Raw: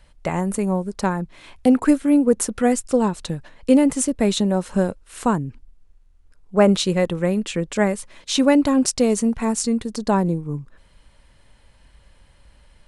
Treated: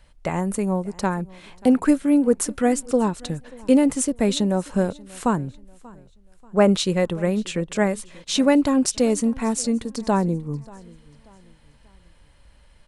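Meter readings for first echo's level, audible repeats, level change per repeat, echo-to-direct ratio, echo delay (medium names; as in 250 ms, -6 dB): -23.0 dB, 2, -8.0 dB, -22.5 dB, 586 ms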